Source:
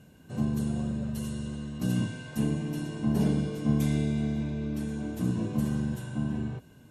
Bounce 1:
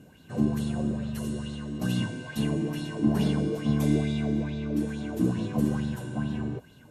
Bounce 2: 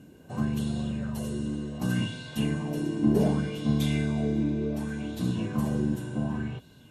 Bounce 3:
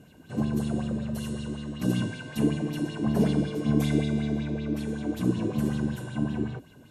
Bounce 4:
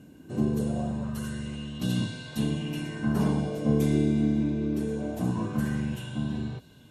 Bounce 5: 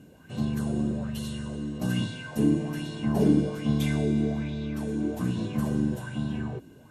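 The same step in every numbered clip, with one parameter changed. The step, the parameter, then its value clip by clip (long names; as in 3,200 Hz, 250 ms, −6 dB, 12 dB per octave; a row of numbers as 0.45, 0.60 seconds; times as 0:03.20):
auto-filter bell, speed: 2.3, 0.67, 5.3, 0.23, 1.2 Hertz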